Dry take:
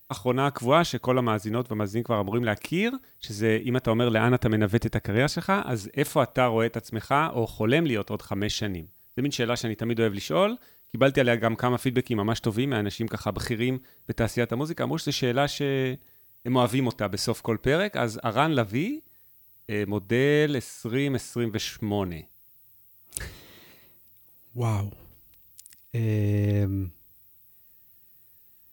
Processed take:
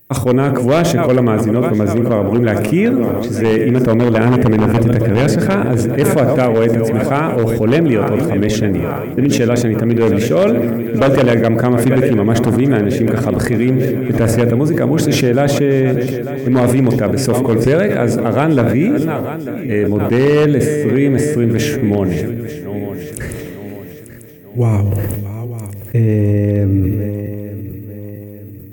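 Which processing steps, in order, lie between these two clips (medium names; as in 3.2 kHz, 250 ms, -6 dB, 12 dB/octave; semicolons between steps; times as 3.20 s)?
backward echo that repeats 447 ms, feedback 67%, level -13.5 dB; ten-band graphic EQ 125 Hz +8 dB, 250 Hz +7 dB, 500 Hz +9 dB, 1 kHz -3 dB, 2 kHz +7 dB, 4 kHz -12 dB, 8 kHz +3 dB; feedback echo behind a low-pass 60 ms, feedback 59%, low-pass 830 Hz, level -14 dB; wavefolder -6.5 dBFS; loudness maximiser +10 dB; decay stretcher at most 23 dB/s; trim -4 dB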